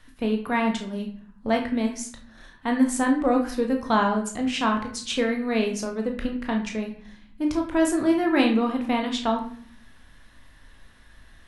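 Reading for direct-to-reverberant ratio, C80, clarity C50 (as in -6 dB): 2.0 dB, 12.0 dB, 8.0 dB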